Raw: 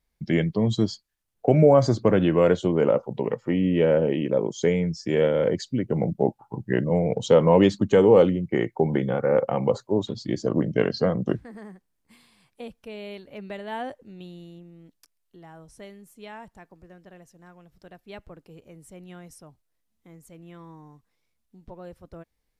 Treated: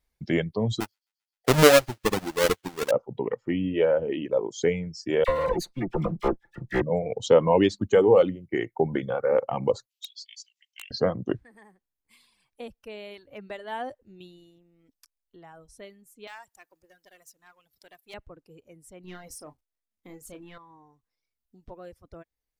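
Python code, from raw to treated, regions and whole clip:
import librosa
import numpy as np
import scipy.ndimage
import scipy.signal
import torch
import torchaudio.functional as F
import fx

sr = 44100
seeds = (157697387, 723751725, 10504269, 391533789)

y = fx.chain(x, sr, fx.halfwave_hold(),
    fx.echo_wet_highpass(ms=131, feedback_pct=75, hz=1900.0, wet_db=-12.0),
    fx.upward_expand(threshold_db=-32.0, expansion=2.5), at=(0.8, 2.91))
y = fx.chain(y, sr, fx.lower_of_two(delay_ms=0.48),
    fx.comb(ms=5.8, depth=0.58),
    fx.dispersion(late='lows', ms=40.0, hz=1700.0), at=(5.24, 6.82))
y = fx.chain(y, sr, fx.steep_highpass(hz=2500.0, slope=48),
    fx.overflow_wrap(gain_db=27.5), at=(9.86, 10.91))
y = fx.chain(y, sr, fx.halfwave_gain(db=-7.0),
    fx.tilt_eq(slope=3.5), at=(16.27, 18.14))
y = fx.chain(y, sr, fx.peak_eq(hz=120.0, db=-6.5, octaves=0.64),
    fx.leveller(passes=2),
    fx.doubler(ms=33.0, db=-9.0), at=(19.04, 20.58))
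y = fx.dereverb_blind(y, sr, rt60_s=1.9)
y = fx.peak_eq(y, sr, hz=180.0, db=-5.5, octaves=0.83)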